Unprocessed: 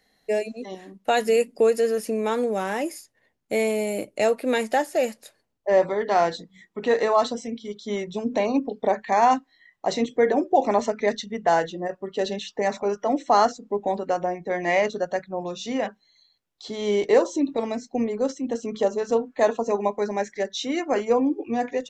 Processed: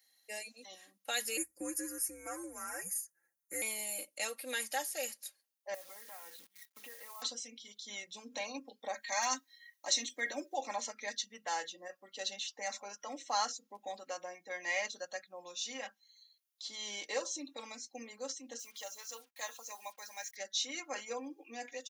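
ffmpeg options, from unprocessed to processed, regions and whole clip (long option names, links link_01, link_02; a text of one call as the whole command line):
ffmpeg -i in.wav -filter_complex "[0:a]asettb=1/sr,asplit=3[link_01][link_02][link_03];[link_01]atrim=end=1.374[link_04];[link_02]atrim=start=1.37:end=3.62,asetpts=PTS-STARTPTS,afade=type=in:duration=0.004:curve=qsin,afade=type=out:start_time=2.246:duration=0.004:curve=qsin,aecho=1:1:5.9:0.74,atrim=end_sample=99225,afreqshift=-150,asuperstop=centerf=3500:order=4:qfactor=0.75[link_05];[link_03]atrim=start=3.616[link_06];[link_04][link_05]acrossfade=duration=0.004:curve1=hsin:curve2=qsin[link_07];[link_07][link_06]acrossfade=duration=0.004:curve1=qsin:curve2=hsin,asettb=1/sr,asplit=3[link_08][link_09][link_10];[link_08]atrim=end=5.744[link_11];[link_09]atrim=start=5.74:end=7.22,asetpts=PTS-STARTPTS,afade=type=in:duration=0.004:curve=qsin,afade=type=out:start_time=1.476:duration=0.004:curve=qsin,lowpass=frequency=2600:width=0.5412,lowpass=frequency=2600:width=1.3066,acompressor=threshold=-33dB:ratio=6:attack=3.2:release=140:knee=1:detection=peak,acrusher=bits=9:dc=4:mix=0:aa=0.000001[link_12];[link_10]atrim=start=7.216[link_13];[link_11][link_12]acrossfade=duration=0.004:curve1=hsin:curve2=qsin[link_14];[link_14][link_13]acrossfade=duration=0.004:curve1=qsin:curve2=hsin,asettb=1/sr,asplit=3[link_15][link_16][link_17];[link_15]atrim=end=8.944[link_18];[link_16]atrim=start=8.94:end=10.54,asetpts=PTS-STARTPTS,afade=type=in:duration=0.004:curve=qsin,afade=type=out:start_time=1.596:duration=0.004:curve=qsin,highshelf=frequency=3500:gain=6.5,aecho=1:1:3.2:0.57,atrim=end_sample=70560,asoftclip=type=hard:threshold=-6dB[link_19];[link_17]atrim=start=10.536[link_20];[link_18][link_19]acrossfade=duration=0.004:curve1=hsin:curve2=qsin[link_21];[link_21][link_20]acrossfade=duration=0.004:curve1=qsin:curve2=hsin,asettb=1/sr,asplit=3[link_22][link_23][link_24];[link_22]atrim=end=18.594[link_25];[link_23]atrim=start=18.59:end=20.36,asetpts=PTS-STARTPTS,afade=type=in:duration=0.004:curve=qsin,afade=type=out:start_time=1.766:duration=0.004:curve=qsin,highpass=frequency=1300:poles=1,acrusher=bits=8:mix=0:aa=0.5[link_26];[link_24]atrim=start=20.356[link_27];[link_25][link_26]acrossfade=duration=0.004:curve1=hsin:curve2=qsin[link_28];[link_28][link_27]acrossfade=duration=0.004:curve1=qsin:curve2=hsin,aderivative,bandreject=frequency=7700:width=9,aecho=1:1:3.7:0.72" out.wav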